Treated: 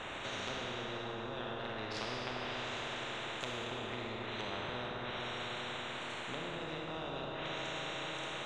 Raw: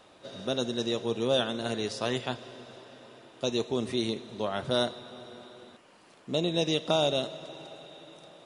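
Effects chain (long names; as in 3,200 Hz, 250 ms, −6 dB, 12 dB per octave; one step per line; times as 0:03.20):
adaptive Wiener filter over 9 samples
treble cut that deepens with the level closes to 450 Hz, closed at −27 dBFS
brickwall limiter −26.5 dBFS, peak gain reduction 10 dB
parametric band 200 Hz −10 dB 1.4 octaves
four-comb reverb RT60 2.6 s, combs from 25 ms, DRR −2.5 dB
every bin compressed towards the loudest bin 4 to 1
level +2 dB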